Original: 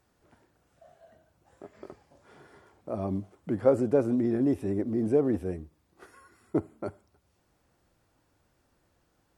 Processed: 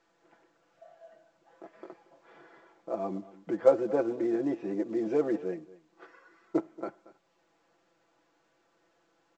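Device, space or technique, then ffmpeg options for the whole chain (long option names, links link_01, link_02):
telephone: -filter_complex "[0:a]asettb=1/sr,asplit=3[link_01][link_02][link_03];[link_01]atrim=end=4.884[link_04];[link_02]atrim=start=4.88:end=5.31,asetpts=PTS-STARTPTS,afade=type=in:duration=0.004:curve=qsin,afade=type=out:start_time=0.426:duration=0.004:curve=qsin,highshelf=frequency=2500:gain=10[link_05];[link_03]atrim=start=5.306[link_06];[link_04][link_05]acrossfade=duration=0.004:curve1=hsin:curve2=qsin[link_07];[link_07][link_06]acrossfade=duration=0.004:curve1=qsin:curve2=hsin,highpass=330,lowpass=3100,aecho=1:1:6:0.85,aecho=1:1:231:0.106,volume=-1dB" -ar 16000 -c:a pcm_mulaw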